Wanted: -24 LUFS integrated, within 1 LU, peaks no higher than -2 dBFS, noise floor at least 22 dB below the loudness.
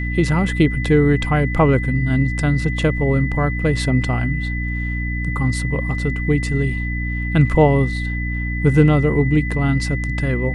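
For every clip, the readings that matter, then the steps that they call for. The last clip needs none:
hum 60 Hz; highest harmonic 300 Hz; hum level -21 dBFS; steady tone 2 kHz; tone level -27 dBFS; loudness -18.5 LUFS; peak level -1.5 dBFS; loudness target -24.0 LUFS
-> hum notches 60/120/180/240/300 Hz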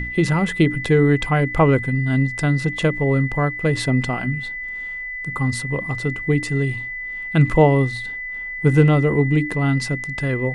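hum not found; steady tone 2 kHz; tone level -27 dBFS
-> band-stop 2 kHz, Q 30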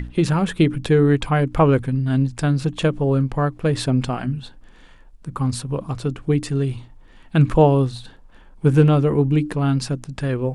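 steady tone not found; loudness -20.0 LUFS; peak level -3.5 dBFS; loudness target -24.0 LUFS
-> trim -4 dB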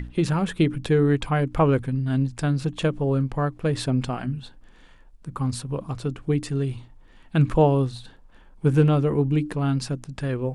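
loudness -24.0 LUFS; peak level -7.5 dBFS; noise floor -51 dBFS

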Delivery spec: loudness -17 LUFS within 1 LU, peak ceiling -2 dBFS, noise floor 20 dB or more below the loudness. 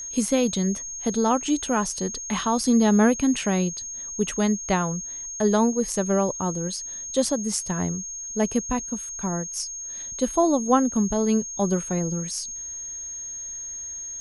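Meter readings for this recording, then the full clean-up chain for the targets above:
steady tone 6.5 kHz; tone level -32 dBFS; loudness -24.5 LUFS; peak level -7.0 dBFS; loudness target -17.0 LUFS
-> band-stop 6.5 kHz, Q 30; trim +7.5 dB; peak limiter -2 dBFS

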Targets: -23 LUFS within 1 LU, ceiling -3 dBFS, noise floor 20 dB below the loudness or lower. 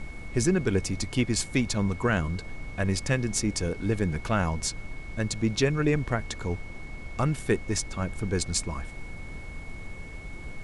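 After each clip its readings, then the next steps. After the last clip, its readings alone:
steady tone 2.2 kHz; tone level -45 dBFS; noise floor -41 dBFS; noise floor target -49 dBFS; loudness -28.5 LUFS; peak level -10.0 dBFS; loudness target -23.0 LUFS
-> band-stop 2.2 kHz, Q 30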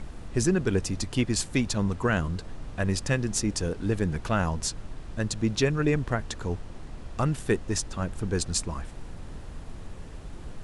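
steady tone not found; noise floor -42 dBFS; noise floor target -49 dBFS
-> noise print and reduce 7 dB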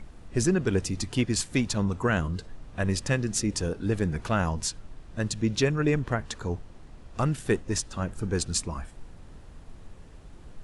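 noise floor -48 dBFS; noise floor target -49 dBFS
-> noise print and reduce 6 dB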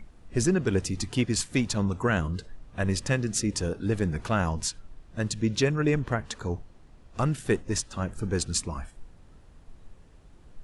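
noise floor -53 dBFS; loudness -28.5 LUFS; peak level -10.0 dBFS; loudness target -23.0 LUFS
-> trim +5.5 dB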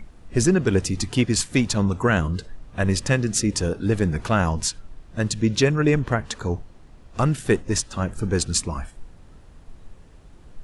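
loudness -23.0 LUFS; peak level -4.5 dBFS; noise floor -48 dBFS

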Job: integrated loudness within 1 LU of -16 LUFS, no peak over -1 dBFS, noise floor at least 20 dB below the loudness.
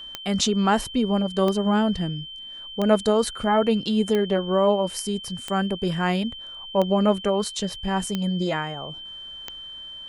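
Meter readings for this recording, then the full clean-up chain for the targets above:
clicks found 8; steady tone 3.1 kHz; tone level -36 dBFS; loudness -23.5 LUFS; peak level -4.5 dBFS; loudness target -16.0 LUFS
-> de-click; band-stop 3.1 kHz, Q 30; trim +7.5 dB; peak limiter -1 dBFS

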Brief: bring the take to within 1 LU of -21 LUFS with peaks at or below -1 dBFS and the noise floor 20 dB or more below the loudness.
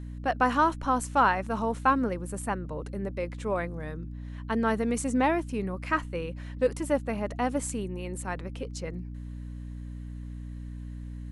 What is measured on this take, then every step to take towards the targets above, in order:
hum 60 Hz; highest harmonic 300 Hz; hum level -36 dBFS; loudness -29.0 LUFS; peak level -10.5 dBFS; loudness target -21.0 LUFS
-> hum notches 60/120/180/240/300 Hz; trim +8 dB

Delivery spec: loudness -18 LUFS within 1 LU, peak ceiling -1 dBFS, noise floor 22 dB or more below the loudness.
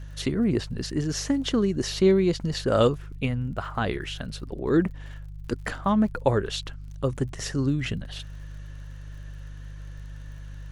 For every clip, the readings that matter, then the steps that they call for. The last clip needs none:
tick rate 48 per s; hum 50 Hz; highest harmonic 150 Hz; hum level -36 dBFS; loudness -26.0 LUFS; peak level -6.5 dBFS; loudness target -18.0 LUFS
-> de-click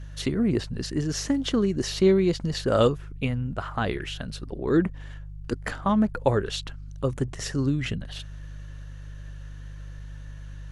tick rate 0.093 per s; hum 50 Hz; highest harmonic 150 Hz; hum level -36 dBFS
-> de-hum 50 Hz, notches 3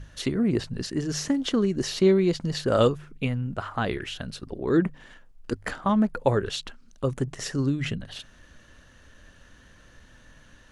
hum not found; loudness -26.5 LUFS; peak level -7.0 dBFS; loudness target -18.0 LUFS
-> trim +8.5 dB; peak limiter -1 dBFS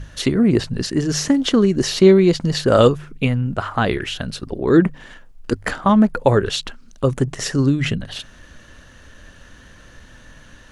loudness -18.0 LUFS; peak level -1.0 dBFS; noise floor -45 dBFS

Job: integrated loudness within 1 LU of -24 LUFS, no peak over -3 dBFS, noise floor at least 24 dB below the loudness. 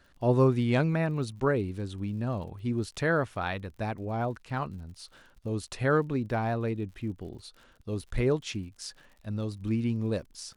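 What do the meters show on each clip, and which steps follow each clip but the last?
tick rate 60 per s; loudness -30.0 LUFS; peak level -11.5 dBFS; loudness target -24.0 LUFS
-> de-click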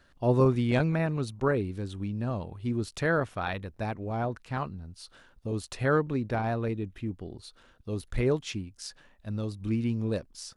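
tick rate 0 per s; loudness -30.5 LUFS; peak level -11.5 dBFS; loudness target -24.0 LUFS
-> trim +6.5 dB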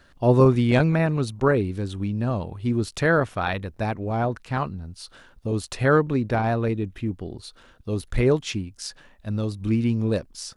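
loudness -24.0 LUFS; peak level -5.0 dBFS; noise floor -55 dBFS

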